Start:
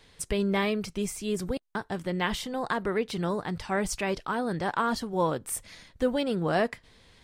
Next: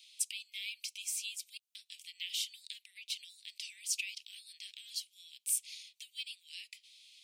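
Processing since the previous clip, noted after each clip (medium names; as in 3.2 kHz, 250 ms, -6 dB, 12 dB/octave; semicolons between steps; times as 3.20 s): compression 4:1, threshold -30 dBFS, peak gain reduction 8.5 dB; steep high-pass 2.4 kHz 72 dB/octave; trim +3 dB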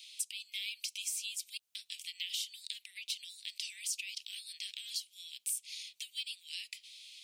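dynamic bell 2.3 kHz, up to -4 dB, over -52 dBFS, Q 2.3; compression 4:1, threshold -42 dBFS, peak gain reduction 12.5 dB; trim +6.5 dB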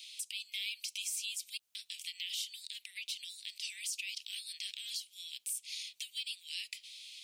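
peak limiter -30 dBFS, peak gain reduction 9.5 dB; trim +2.5 dB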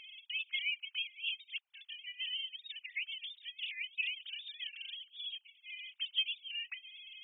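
formants replaced by sine waves; trim +1 dB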